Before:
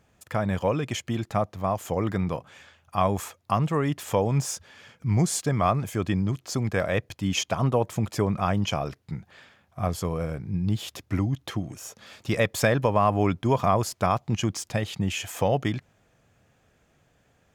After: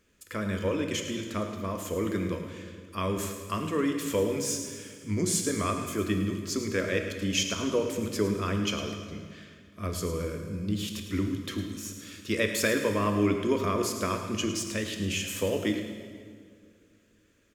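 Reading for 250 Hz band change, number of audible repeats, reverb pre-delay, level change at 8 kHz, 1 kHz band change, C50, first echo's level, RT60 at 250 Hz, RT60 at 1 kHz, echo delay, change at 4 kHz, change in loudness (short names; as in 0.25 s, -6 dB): -1.5 dB, 1, 8 ms, +1.5 dB, -8.5 dB, 5.5 dB, -11.5 dB, 2.6 s, 1.9 s, 0.107 s, +1.0 dB, -3.5 dB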